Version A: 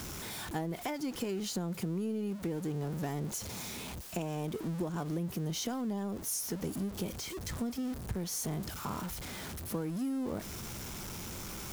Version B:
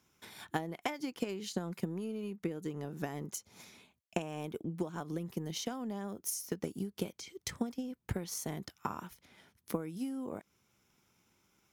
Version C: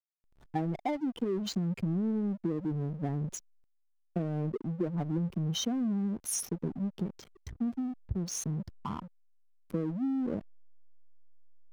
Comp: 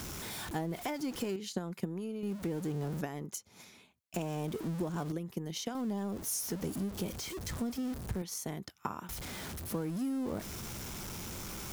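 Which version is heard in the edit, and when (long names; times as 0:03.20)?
A
0:01.36–0:02.23: punch in from B
0:03.01–0:04.14: punch in from B
0:05.12–0:05.75: punch in from B
0:08.22–0:09.09: punch in from B
not used: C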